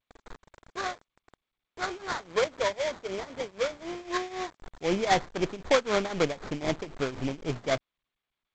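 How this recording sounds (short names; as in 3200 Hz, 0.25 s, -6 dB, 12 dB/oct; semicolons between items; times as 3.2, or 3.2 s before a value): a quantiser's noise floor 8-bit, dither none; tremolo triangle 3.9 Hz, depth 85%; aliases and images of a low sample rate 2800 Hz, jitter 20%; G.722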